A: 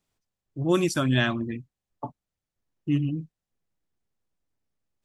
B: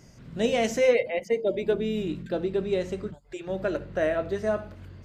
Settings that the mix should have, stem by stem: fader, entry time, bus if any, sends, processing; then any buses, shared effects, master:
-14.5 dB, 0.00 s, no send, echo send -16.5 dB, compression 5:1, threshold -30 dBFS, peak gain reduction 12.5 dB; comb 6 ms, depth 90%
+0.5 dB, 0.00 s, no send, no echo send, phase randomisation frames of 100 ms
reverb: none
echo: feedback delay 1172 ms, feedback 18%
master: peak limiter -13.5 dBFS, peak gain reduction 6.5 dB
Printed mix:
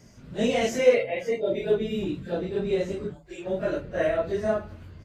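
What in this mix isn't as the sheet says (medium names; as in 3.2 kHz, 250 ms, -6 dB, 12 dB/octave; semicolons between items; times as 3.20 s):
stem A -14.5 dB -> -21.0 dB; master: missing peak limiter -13.5 dBFS, peak gain reduction 6.5 dB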